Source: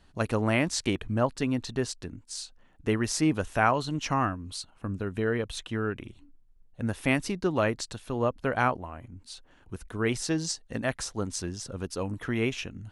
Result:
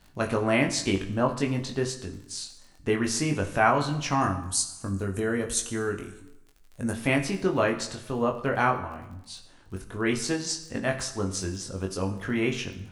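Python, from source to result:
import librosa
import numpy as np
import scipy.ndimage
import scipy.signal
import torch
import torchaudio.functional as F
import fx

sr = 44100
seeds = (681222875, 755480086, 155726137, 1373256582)

y = fx.high_shelf_res(x, sr, hz=5000.0, db=12.5, q=1.5, at=(4.21, 6.91))
y = fx.dmg_crackle(y, sr, seeds[0], per_s=17.0, level_db=-41.0)
y = fx.doubler(y, sr, ms=21.0, db=-4.0)
y = fx.rev_plate(y, sr, seeds[1], rt60_s=0.88, hf_ratio=0.85, predelay_ms=0, drr_db=7.5)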